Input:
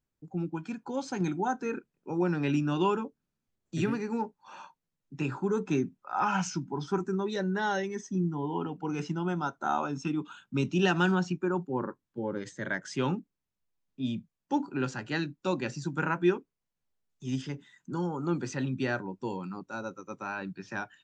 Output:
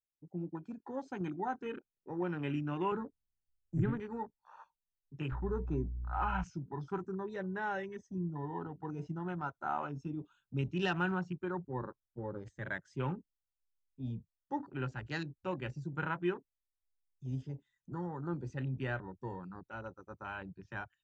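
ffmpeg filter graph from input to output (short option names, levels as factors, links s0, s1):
-filter_complex "[0:a]asettb=1/sr,asplit=3[s0][s1][s2];[s0]atrim=end=2.924[s3];[s1]atrim=start=2.92:end=4,asetpts=PTS-STARTPTS,afade=t=in:d=0.004:c=qsin,afade=t=out:st=1.076:d=0.004:c=qsin,asuperstop=centerf=3800:order=8:qfactor=0.86,bass=f=250:g=8,treble=f=4000:g=0[s4];[s2]atrim=start=3.996[s5];[s3][s4]acrossfade=d=0.004:c1=hsin:c2=qsin[s6];[s6][s5]acrossfade=d=0.004:c1=qsin:c2=hsin,asettb=1/sr,asplit=3[s7][s8][s9];[s7]atrim=end=5.324[s10];[s8]atrim=start=5.32:end=6.44,asetpts=PTS-STARTPTS,afade=t=in:d=0.004:c=qsin,afade=t=out:st=1.116:d=0.004:c=qsin,aemphasis=mode=reproduction:type=50fm,aeval=exprs='val(0)+0.00631*(sin(2*PI*60*n/s)+sin(2*PI*2*60*n/s)/2+sin(2*PI*3*60*n/s)/3+sin(2*PI*4*60*n/s)/4+sin(2*PI*5*60*n/s)/5)':c=same[s11];[s9]atrim=start=6.436[s12];[s10][s11]acrossfade=d=0.004:c1=hsin:c2=qsin[s13];[s13][s12]acrossfade=d=0.004:c1=qsin:c2=hsin,afwtdn=0.00891,asubboost=boost=10.5:cutoff=68,volume=0.501"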